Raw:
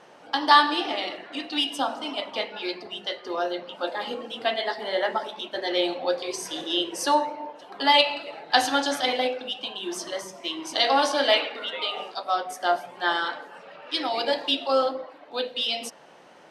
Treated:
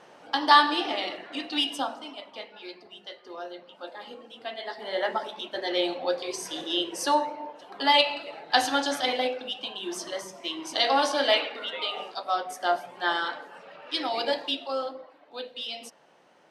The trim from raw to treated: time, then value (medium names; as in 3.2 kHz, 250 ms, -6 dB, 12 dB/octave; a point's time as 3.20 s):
1.71 s -1 dB
2.19 s -11 dB
4.49 s -11 dB
5.05 s -2 dB
14.30 s -2 dB
14.76 s -8.5 dB